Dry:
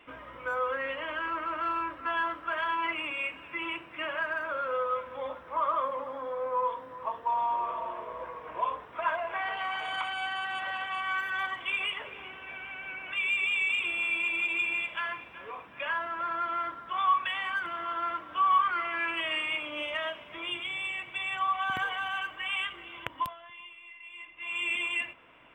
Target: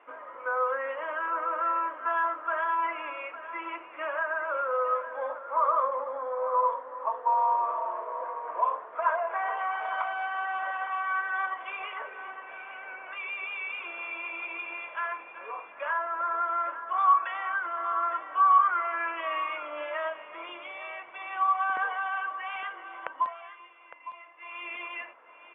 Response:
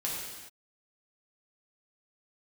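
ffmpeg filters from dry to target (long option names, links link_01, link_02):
-af "asuperpass=centerf=860:order=4:qfactor=0.78,aecho=1:1:859:0.224,volume=4dB"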